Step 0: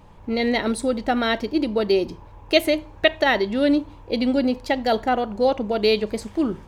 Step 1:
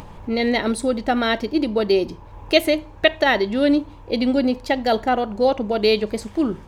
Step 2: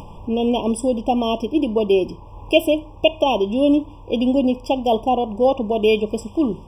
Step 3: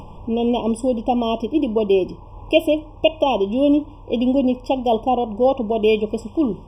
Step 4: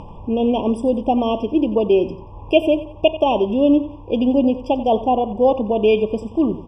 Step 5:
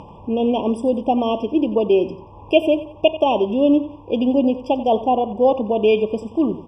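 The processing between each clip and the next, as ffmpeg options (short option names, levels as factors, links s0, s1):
-af "acompressor=mode=upward:threshold=0.0251:ratio=2.5,volume=1.19"
-af "afftfilt=real='re*eq(mod(floor(b*sr/1024/1200),2),0)':imag='im*eq(mod(floor(b*sr/1024/1200),2),0)':win_size=1024:overlap=0.75,volume=1.19"
-af "highshelf=f=4300:g=-7.5"
-af "aemphasis=mode=reproduction:type=50fm,aecho=1:1:90|180|270:0.178|0.064|0.023,volume=1.12"
-af "highpass=f=140:p=1"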